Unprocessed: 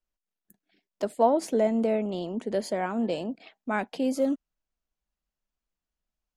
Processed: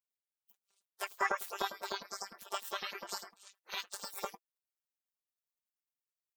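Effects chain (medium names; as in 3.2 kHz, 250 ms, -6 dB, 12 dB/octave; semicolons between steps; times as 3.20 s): rotating-head pitch shifter +9.5 st; LFO high-pass saw up 9.9 Hz 530–6000 Hz; robot voice 197 Hz; spectral gate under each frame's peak -15 dB weak; treble shelf 7.7 kHz +5.5 dB; trim +3.5 dB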